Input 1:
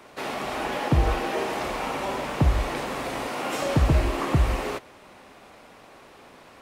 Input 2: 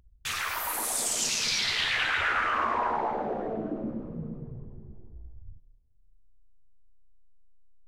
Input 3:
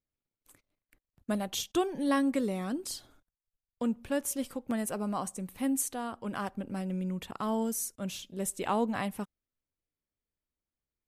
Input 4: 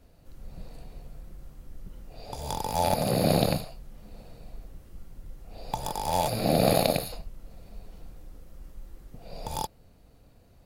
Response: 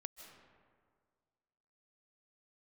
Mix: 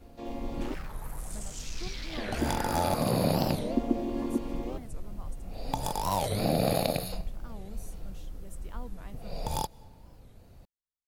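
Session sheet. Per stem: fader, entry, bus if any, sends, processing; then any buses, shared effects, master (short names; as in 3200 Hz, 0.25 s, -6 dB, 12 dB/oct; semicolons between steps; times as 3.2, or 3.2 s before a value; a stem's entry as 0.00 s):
-5.5 dB, 0.00 s, muted 0.75–2.19, no send, chord vocoder minor triad, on A#3; bell 1500 Hz -12.5 dB 1.2 oct
-13.5 dB, 0.35 s, no send, Wiener smoothing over 15 samples
-18.0 dB, 0.05 s, no send, dry
+0.5 dB, 0.00 s, send -12.5 dB, compressor 2:1, threshold -30 dBFS, peak gain reduction 8 dB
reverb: on, RT60 1.9 s, pre-delay 0.115 s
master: low shelf 230 Hz +3.5 dB; record warp 45 rpm, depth 250 cents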